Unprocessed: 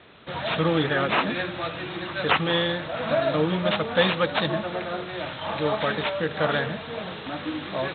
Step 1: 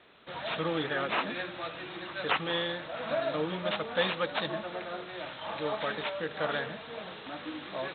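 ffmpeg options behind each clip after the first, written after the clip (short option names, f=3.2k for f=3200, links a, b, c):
-af "equalizer=f=96:t=o:w=2.2:g=-8.5,volume=-7dB"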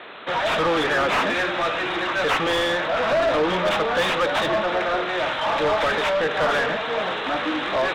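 -filter_complex "[0:a]asplit=2[a][b];[b]highpass=f=720:p=1,volume=28dB,asoftclip=type=tanh:threshold=-13.5dB[c];[a][c]amix=inputs=2:normalize=0,lowpass=f=1.7k:p=1,volume=-6dB,volume=2dB"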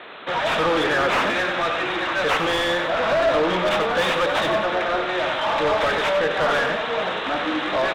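-af "aecho=1:1:93|186|279|372|465:0.355|0.145|0.0596|0.0245|0.01"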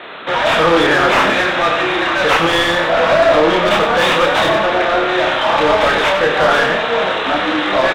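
-filter_complex "[0:a]asplit=2[a][b];[b]adelay=30,volume=-4dB[c];[a][c]amix=inputs=2:normalize=0,volume=6.5dB"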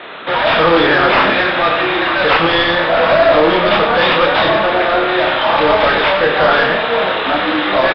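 -af "aresample=11025,aresample=44100,volume=1dB"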